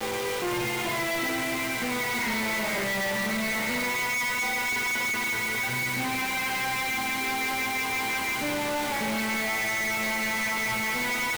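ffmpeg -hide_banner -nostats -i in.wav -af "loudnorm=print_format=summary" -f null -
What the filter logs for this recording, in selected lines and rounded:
Input Integrated:    -26.5 LUFS
Input True Peak:     -23.7 dBTP
Input LRA:             0.9 LU
Input Threshold:     -36.5 LUFS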